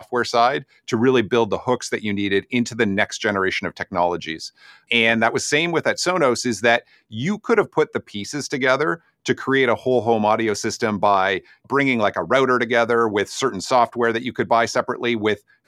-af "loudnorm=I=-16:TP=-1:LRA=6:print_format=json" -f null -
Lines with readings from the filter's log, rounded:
"input_i" : "-20.1",
"input_tp" : "-1.8",
"input_lra" : "1.6",
"input_thresh" : "-30.2",